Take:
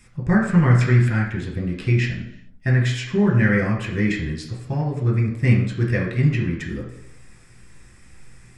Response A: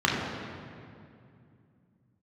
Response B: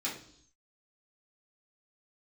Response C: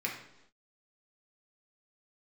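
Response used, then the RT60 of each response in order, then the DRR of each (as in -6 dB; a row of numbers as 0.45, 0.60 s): C; 2.4 s, 0.65 s, not exponential; -4.0, -7.0, -2.0 dB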